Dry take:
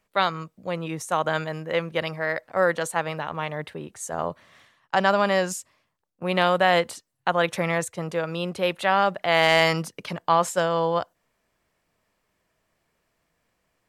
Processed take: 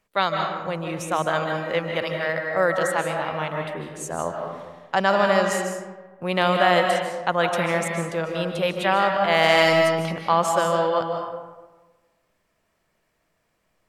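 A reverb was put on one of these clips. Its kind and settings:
comb and all-pass reverb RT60 1.3 s, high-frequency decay 0.5×, pre-delay 110 ms, DRR 2.5 dB

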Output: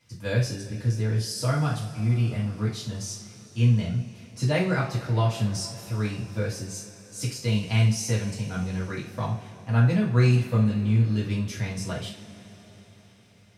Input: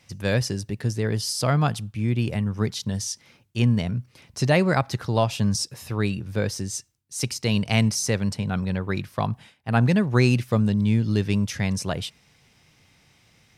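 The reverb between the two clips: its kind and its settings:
coupled-rooms reverb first 0.39 s, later 4.9 s, from −21 dB, DRR −6 dB
level −11.5 dB

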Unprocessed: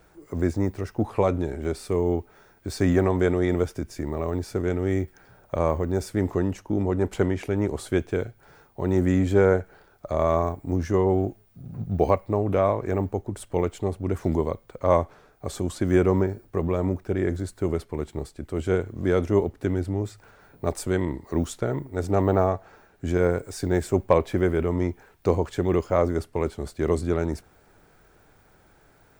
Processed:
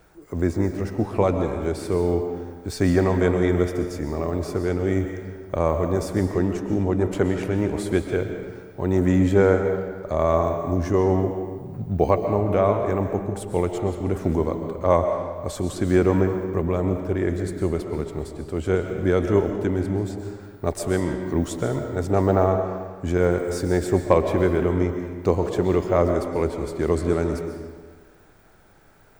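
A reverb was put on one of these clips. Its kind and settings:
comb and all-pass reverb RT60 1.5 s, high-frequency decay 0.8×, pre-delay 90 ms, DRR 5.5 dB
level +1.5 dB

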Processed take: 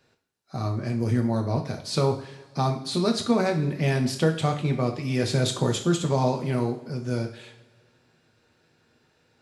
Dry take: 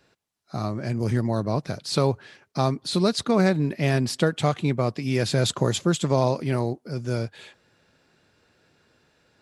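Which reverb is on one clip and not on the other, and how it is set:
coupled-rooms reverb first 0.48 s, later 2 s, from −18 dB, DRR 3 dB
level −3.5 dB

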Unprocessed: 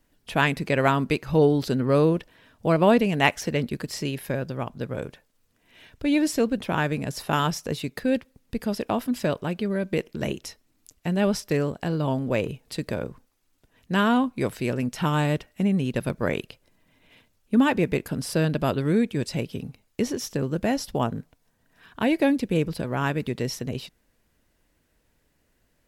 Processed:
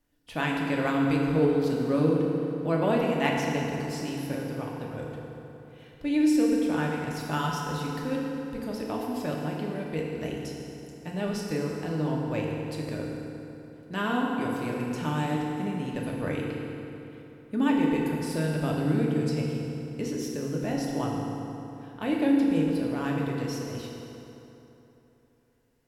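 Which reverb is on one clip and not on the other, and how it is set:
feedback delay network reverb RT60 3.3 s, high-frequency decay 0.65×, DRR −2.5 dB
level −9.5 dB

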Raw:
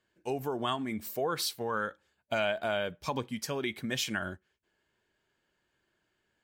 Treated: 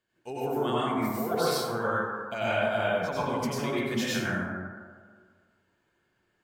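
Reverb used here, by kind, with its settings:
dense smooth reverb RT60 1.7 s, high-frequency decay 0.3×, pre-delay 80 ms, DRR −9 dB
level −5 dB

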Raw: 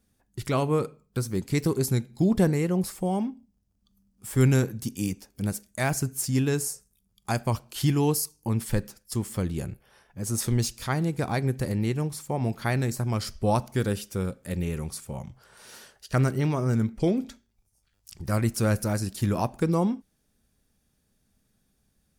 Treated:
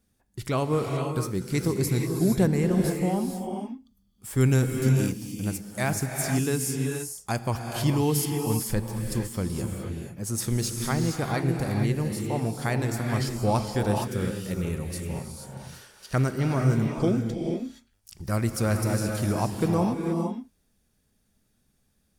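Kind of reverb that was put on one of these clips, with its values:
reverb whose tail is shaped and stops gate 500 ms rising, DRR 2.5 dB
level −1 dB

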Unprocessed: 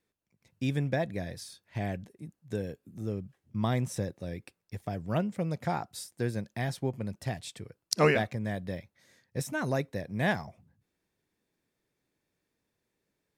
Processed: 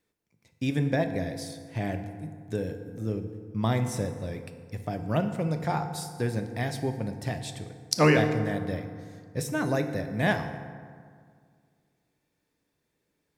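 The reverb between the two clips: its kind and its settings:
feedback delay network reverb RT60 2 s, low-frequency decay 1.1×, high-frequency decay 0.5×, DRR 6.5 dB
level +2.5 dB

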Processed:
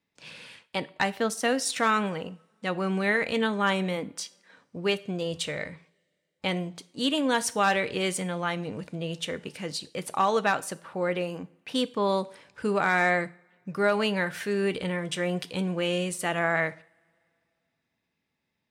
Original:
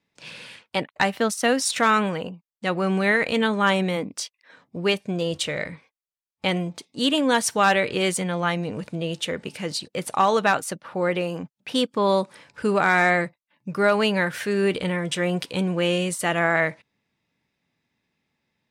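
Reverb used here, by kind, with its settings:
coupled-rooms reverb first 0.47 s, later 2.7 s, from −27 dB, DRR 14.5 dB
level −5 dB

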